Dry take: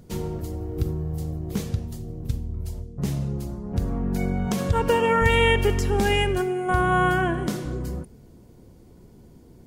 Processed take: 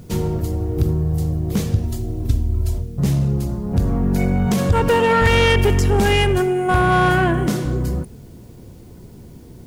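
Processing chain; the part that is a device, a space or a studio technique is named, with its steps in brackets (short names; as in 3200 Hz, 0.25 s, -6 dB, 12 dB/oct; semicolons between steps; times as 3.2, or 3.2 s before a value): open-reel tape (soft clip -18 dBFS, distortion -13 dB; bell 110 Hz +4 dB 1.14 oct; white noise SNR 41 dB); 1.83–2.78 comb 3 ms, depth 72%; gain +7.5 dB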